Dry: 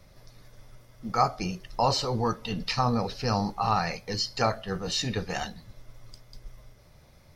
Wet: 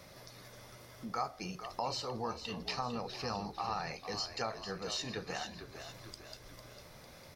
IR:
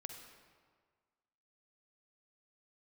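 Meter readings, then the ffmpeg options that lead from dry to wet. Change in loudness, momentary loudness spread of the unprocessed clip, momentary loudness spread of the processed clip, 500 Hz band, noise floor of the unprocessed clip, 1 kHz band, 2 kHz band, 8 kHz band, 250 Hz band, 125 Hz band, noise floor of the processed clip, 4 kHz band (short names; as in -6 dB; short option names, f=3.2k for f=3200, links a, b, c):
-11.0 dB, 8 LU, 15 LU, -10.0 dB, -55 dBFS, -11.0 dB, -8.0 dB, -8.0 dB, -12.0 dB, -15.0 dB, -55 dBFS, -8.5 dB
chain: -filter_complex "[0:a]highpass=f=270:p=1,acompressor=threshold=-55dB:ratio=2,asplit=2[a][b];[b]asplit=6[c][d][e][f][g][h];[c]adelay=451,afreqshift=-51,volume=-10dB[i];[d]adelay=902,afreqshift=-102,volume=-15.4dB[j];[e]adelay=1353,afreqshift=-153,volume=-20.7dB[k];[f]adelay=1804,afreqshift=-204,volume=-26.1dB[l];[g]adelay=2255,afreqshift=-255,volume=-31.4dB[m];[h]adelay=2706,afreqshift=-306,volume=-36.8dB[n];[i][j][k][l][m][n]amix=inputs=6:normalize=0[o];[a][o]amix=inputs=2:normalize=0,volume=6dB"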